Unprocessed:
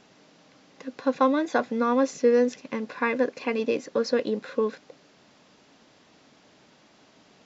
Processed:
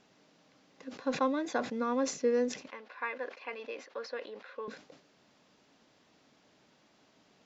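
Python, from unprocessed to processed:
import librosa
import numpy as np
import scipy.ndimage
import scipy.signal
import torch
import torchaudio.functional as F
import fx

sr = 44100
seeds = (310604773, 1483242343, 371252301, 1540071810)

y = fx.bandpass_edges(x, sr, low_hz=700.0, high_hz=3400.0, at=(2.68, 4.68))
y = fx.sustainer(y, sr, db_per_s=130.0)
y = y * 10.0 ** (-8.5 / 20.0)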